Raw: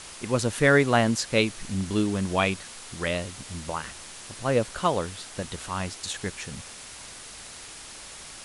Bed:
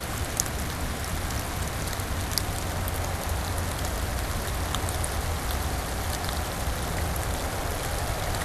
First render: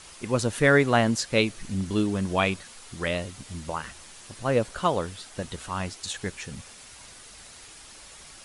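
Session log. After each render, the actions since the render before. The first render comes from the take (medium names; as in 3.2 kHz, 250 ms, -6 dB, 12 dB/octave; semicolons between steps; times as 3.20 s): noise reduction 6 dB, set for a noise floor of -43 dBFS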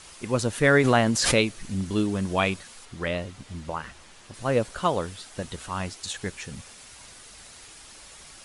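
0.76–1.54 s: swell ahead of each attack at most 34 dB/s; 2.85–4.34 s: low-pass 3.4 kHz 6 dB/octave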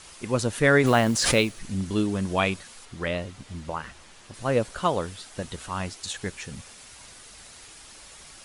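0.86–1.59 s: companded quantiser 6-bit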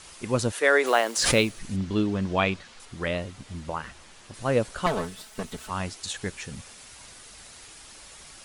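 0.52–1.17 s: high-pass 380 Hz 24 dB/octave; 1.76–2.80 s: low-pass 4.9 kHz; 4.86–5.70 s: comb filter that takes the minimum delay 4.6 ms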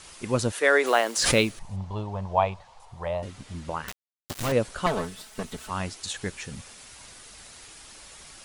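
1.59–3.23 s: FFT filter 120 Hz 0 dB, 290 Hz -19 dB, 600 Hz +2 dB, 920 Hz +9 dB, 1.4 kHz -11 dB; 3.88–4.52 s: companded quantiser 2-bit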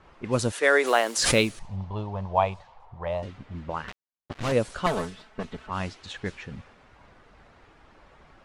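level-controlled noise filter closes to 1.1 kHz, open at -22 dBFS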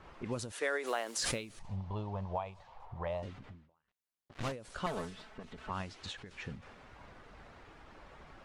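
compression 2.5:1, threshold -38 dBFS, peak gain reduction 15 dB; endings held to a fixed fall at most 120 dB/s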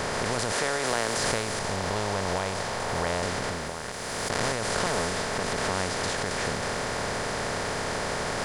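spectral levelling over time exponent 0.2; swell ahead of each attack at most 21 dB/s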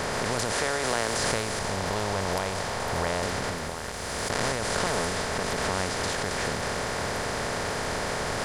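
add bed -14.5 dB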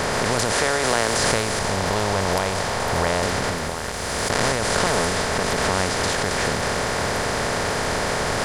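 trim +6.5 dB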